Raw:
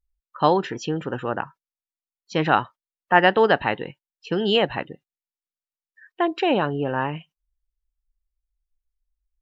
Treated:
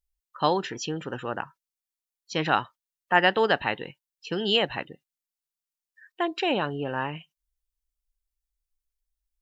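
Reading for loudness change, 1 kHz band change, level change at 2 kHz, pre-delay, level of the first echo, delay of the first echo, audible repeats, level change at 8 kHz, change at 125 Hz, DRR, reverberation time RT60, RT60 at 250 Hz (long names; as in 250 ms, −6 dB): −4.5 dB, −5.0 dB, −2.5 dB, no reverb audible, no echo audible, no echo audible, no echo audible, can't be measured, −6.0 dB, no reverb audible, no reverb audible, no reverb audible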